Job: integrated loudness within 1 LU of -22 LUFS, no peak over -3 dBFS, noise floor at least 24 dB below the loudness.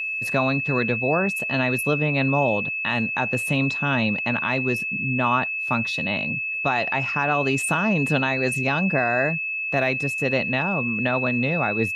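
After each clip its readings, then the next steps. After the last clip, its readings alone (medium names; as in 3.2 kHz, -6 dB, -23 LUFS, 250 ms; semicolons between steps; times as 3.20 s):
steady tone 2.6 kHz; tone level -25 dBFS; loudness -22.0 LUFS; peak level -9.0 dBFS; loudness target -22.0 LUFS
-> band-stop 2.6 kHz, Q 30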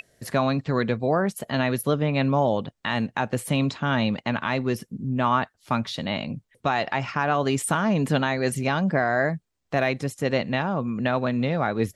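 steady tone not found; loudness -25.0 LUFS; peak level -10.0 dBFS; loudness target -22.0 LUFS
-> trim +3 dB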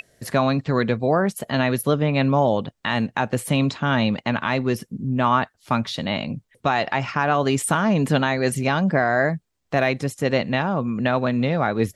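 loudness -22.0 LUFS; peak level -7.0 dBFS; noise floor -70 dBFS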